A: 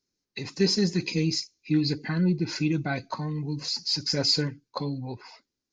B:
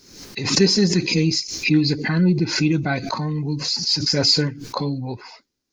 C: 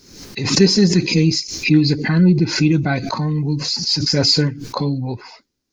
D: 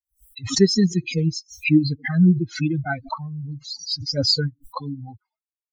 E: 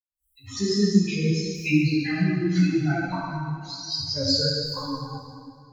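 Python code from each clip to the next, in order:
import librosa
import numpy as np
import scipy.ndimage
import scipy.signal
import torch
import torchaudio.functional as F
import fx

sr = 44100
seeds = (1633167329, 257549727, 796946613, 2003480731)

y1 = fx.pre_swell(x, sr, db_per_s=71.0)
y1 = y1 * librosa.db_to_amplitude(6.5)
y2 = fx.low_shelf(y1, sr, hz=280.0, db=4.5)
y2 = y2 * librosa.db_to_amplitude(1.5)
y3 = fx.bin_expand(y2, sr, power=3.0)
y4 = fx.fade_in_head(y3, sr, length_s=1.17)
y4 = fx.rev_plate(y4, sr, seeds[0], rt60_s=2.2, hf_ratio=0.8, predelay_ms=0, drr_db=-6.5)
y4 = fx.ensemble(y4, sr)
y4 = y4 * librosa.db_to_amplitude(-4.5)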